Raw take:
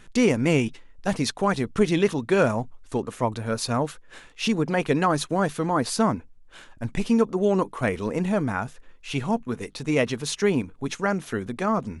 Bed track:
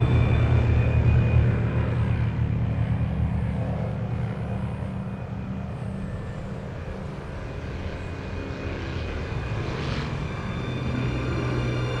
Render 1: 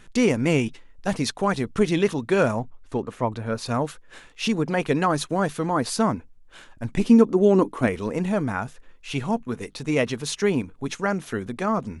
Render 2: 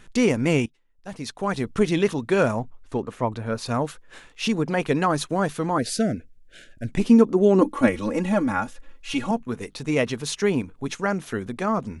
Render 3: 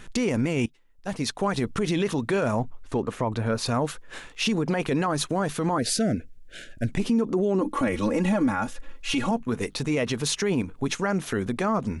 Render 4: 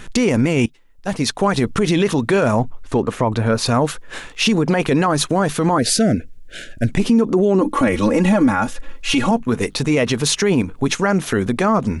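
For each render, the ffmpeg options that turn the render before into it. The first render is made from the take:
-filter_complex "[0:a]asettb=1/sr,asplit=3[a][b][c];[a]atrim=end=2.594[d];[b]atrim=start=2.59:end=3.66,asetpts=PTS-STARTPTS,afade=t=in:d=0.004:c=qsin,afade=t=out:st=1.066:d=0.004:c=qsin,highshelf=f=5.3k:g=-11.5[e];[c]atrim=start=3.656[f];[d][e]acrossfade=d=0.004:c1=hsin:c2=qsin[g];[g][f]acrossfade=d=0.004:c1=qsin:c2=hsin,asettb=1/sr,asplit=3[h][i][j];[h]atrim=end=6.974[k];[i]atrim=start=6.97:end=7.87,asetpts=PTS-STARTPTS,afade=t=in:d=0.004:c=qsin,afade=t=out:st=0.896:d=0.004:c=qsin,equalizer=f=290:w=1.5:g=10[l];[j]atrim=start=7.866[m];[k][l]acrossfade=d=0.004:c1=hsin:c2=qsin[n];[n][m]acrossfade=d=0.004:c1=qsin:c2=hsin"
-filter_complex "[0:a]asettb=1/sr,asplit=3[a][b][c];[a]atrim=end=5.784[d];[b]atrim=start=5.78:end=6.91,asetpts=PTS-STARTPTS,afade=t=in:d=0.004:c=qsin,afade=t=out:st=1.126:d=0.004:c=qsin,asuperstop=centerf=1000:order=8:qfactor=1.3[e];[c]atrim=start=6.906[f];[d][e]acrossfade=d=0.004:c1=hsin:c2=qsin[g];[g][f]acrossfade=d=0.004:c1=qsin:c2=hsin,asettb=1/sr,asplit=3[h][i][j];[h]atrim=end=7.614[k];[i]atrim=start=7.61:end=9.31,asetpts=PTS-STARTPTS,afade=t=in:d=0.004:c=qsin,afade=t=out:st=1.696:d=0.004:c=qsin,aecho=1:1:3.6:0.89,atrim=end_sample=74970[l];[j]atrim=start=9.306[m];[k][l]acrossfade=d=0.004:c1=hsin:c2=qsin[n];[n][m]acrossfade=d=0.004:c1=qsin:c2=hsin,asplit=2[o][p];[o]atrim=end=0.66,asetpts=PTS-STARTPTS,afade=t=out:st=0.656:d=0.004:c=hsin:silence=0.0749894[q];[p]atrim=start=0.66,asetpts=PTS-STARTPTS,afade=t=in:d=0.98:c=qua:silence=0.0749894[r];[q][r]concat=n=2:v=0:a=1"
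-filter_complex "[0:a]asplit=2[a][b];[b]acompressor=threshold=-26dB:ratio=6,volume=-1.5dB[c];[a][c]amix=inputs=2:normalize=0,alimiter=limit=-16dB:level=0:latency=1:release=41"
-af "volume=8.5dB"

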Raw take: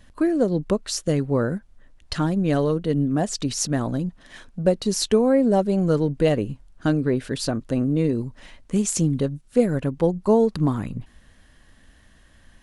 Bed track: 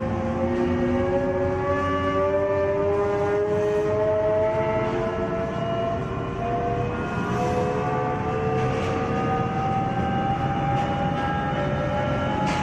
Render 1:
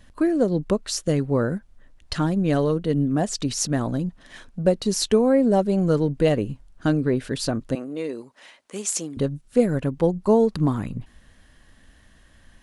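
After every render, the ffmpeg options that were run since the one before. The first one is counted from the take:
-filter_complex "[0:a]asettb=1/sr,asplit=3[a][b][c];[a]atrim=end=7.754[d];[b]atrim=start=7.75:end=9.17,asetpts=PTS-STARTPTS,afade=t=in:d=0.004:c=qsin,afade=t=out:st=1.416:d=0.004:c=qsin,highpass=490[e];[c]atrim=start=9.166[f];[d][e]acrossfade=d=0.004:c1=hsin:c2=qsin[g];[g][f]acrossfade=d=0.004:c1=qsin:c2=hsin"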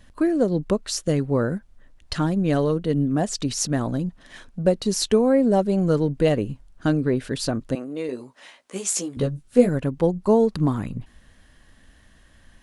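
-filter_complex "[0:a]asettb=1/sr,asplit=3[a][b][c];[a]atrim=end=8.074[d];[b]atrim=start=8.07:end=9.69,asetpts=PTS-STARTPTS,afade=t=in:d=0.004:c=qsin,afade=t=out:st=1.616:d=0.004:c=qsin,asplit=2[e][f];[f]adelay=16,volume=-3.5dB[g];[e][g]amix=inputs=2:normalize=0,atrim=end_sample=71442[h];[c]atrim=start=9.686[i];[d][h]acrossfade=d=0.004:c1=hsin:c2=qsin[j];[j][i]acrossfade=d=0.004:c1=qsin:c2=hsin"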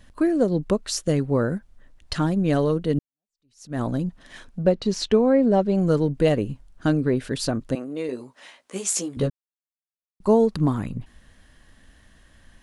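-filter_complex "[0:a]asettb=1/sr,asplit=3[a][b][c];[a]atrim=end=4.644[d];[b]atrim=start=4.64:end=5.75,asetpts=PTS-STARTPTS,afade=t=in:d=0.004:c=qsin,afade=t=out:st=1.106:d=0.004:c=qsin,lowpass=4.6k[e];[c]atrim=start=5.746[f];[d][e]acrossfade=d=0.004:c1=hsin:c2=qsin[g];[g][f]acrossfade=d=0.004:c1=qsin:c2=hsin,asplit=4[h][i][j][k];[h]atrim=end=2.99,asetpts=PTS-STARTPTS,afade=t=out:st=2.986:d=0.004:c=hsin[l];[i]atrim=start=2.99:end=9.3,asetpts=PTS-STARTPTS,afade=t=in:d=0.81:c=exp,afade=t=out:st=6.306:d=0.004:c=hsin[m];[j]atrim=start=9.3:end=10.2,asetpts=PTS-STARTPTS,volume=0[n];[k]atrim=start=10.2,asetpts=PTS-STARTPTS,afade=t=in:d=0.004:c=hsin[o];[l][m][n][o]concat=n=4:v=0:a=1"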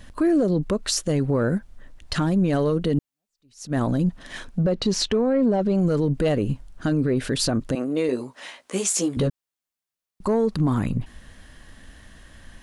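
-af "acontrast=79,alimiter=limit=-14dB:level=0:latency=1:release=60"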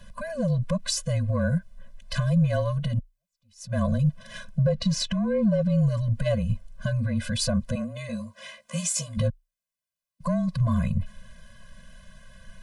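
-af "afreqshift=-29,afftfilt=real='re*eq(mod(floor(b*sr/1024/240),2),0)':imag='im*eq(mod(floor(b*sr/1024/240),2),0)':win_size=1024:overlap=0.75"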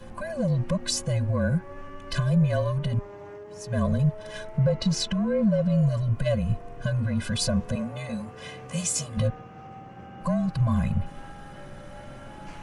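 -filter_complex "[1:a]volume=-19.5dB[a];[0:a][a]amix=inputs=2:normalize=0"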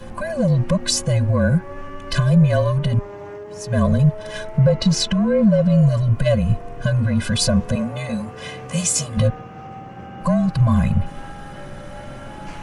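-af "volume=7.5dB"

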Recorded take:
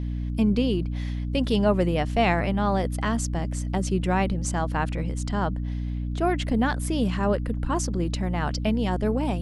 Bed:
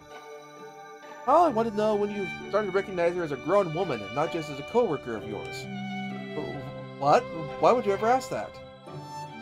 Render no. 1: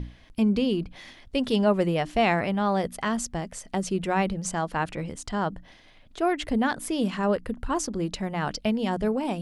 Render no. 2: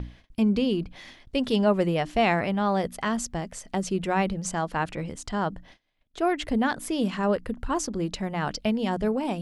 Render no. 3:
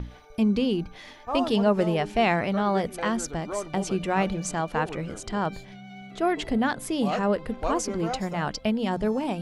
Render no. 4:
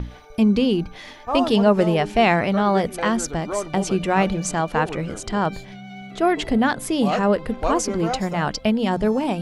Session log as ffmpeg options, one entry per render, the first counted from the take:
-af "bandreject=f=60:t=h:w=6,bandreject=f=120:t=h:w=6,bandreject=f=180:t=h:w=6,bandreject=f=240:t=h:w=6,bandreject=f=300:t=h:w=6"
-af "agate=range=-23dB:threshold=-49dB:ratio=16:detection=peak,equalizer=f=9.5k:w=5.9:g=-4.5"
-filter_complex "[1:a]volume=-9dB[a];[0:a][a]amix=inputs=2:normalize=0"
-af "volume=5.5dB"

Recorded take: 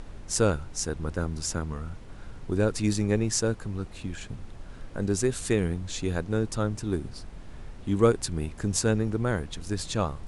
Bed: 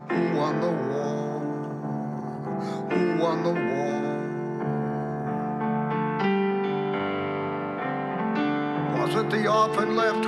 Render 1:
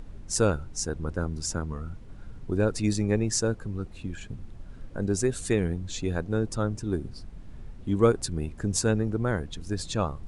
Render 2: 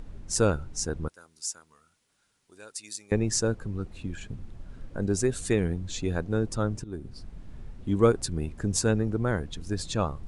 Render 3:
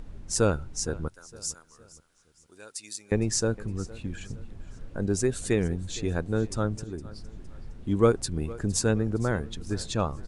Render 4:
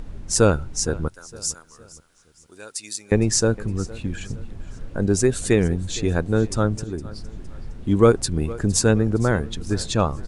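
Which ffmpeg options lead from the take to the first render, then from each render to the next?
-af "afftdn=nr=8:nf=-43"
-filter_complex "[0:a]asettb=1/sr,asplit=3[a][b][c];[a]atrim=end=1.084[d];[b]atrim=start=1.08:end=3.12,asetpts=PTS-STARTPTS,afade=t=in:d=0.004:c=qsin,afade=t=out:st=2.036:d=0.004:c=qsin,aderivative[e];[c]atrim=start=3.116[f];[d][e]acrossfade=d=0.004:c1=hsin:c2=qsin[g];[g][f]acrossfade=d=0.004:c1=qsin:c2=hsin,asplit=2[h][i];[h]atrim=end=6.84,asetpts=PTS-STARTPTS,afade=t=out:st=6.836:d=0.004:c=hsin:silence=0.188365[j];[i]atrim=start=6.84,asetpts=PTS-STARTPTS,afade=t=in:d=0.43:silence=0.188365[k];[j][k]concat=n=2:v=0:a=1"
-af "aecho=1:1:462|924|1386:0.106|0.0434|0.0178"
-af "volume=7dB,alimiter=limit=-3dB:level=0:latency=1"

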